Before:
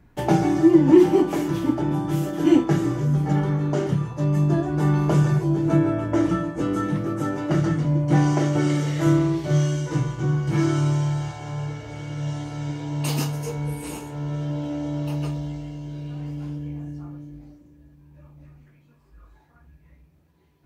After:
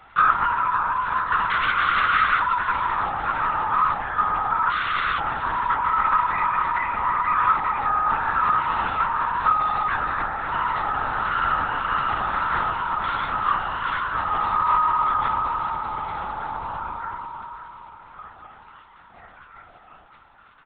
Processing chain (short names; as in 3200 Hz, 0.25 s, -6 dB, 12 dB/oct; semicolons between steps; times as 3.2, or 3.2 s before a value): compressor 2.5:1, threshold -27 dBFS, peak gain reduction 12.5 dB; limiter -23.5 dBFS, peak gain reduction 9.5 dB; ring modulator 660 Hz; 1.5–2.4 wrapped overs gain 29 dB; crackle 84/s -47 dBFS; 4.7–5.19 wrapped overs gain 33.5 dB; resonant high-pass 1300 Hz, resonance Q 8.4; doubler 17 ms -3.5 dB; feedback echo 0.554 s, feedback 59%, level -12.5 dB; LPC vocoder at 8 kHz whisper; gain +7.5 dB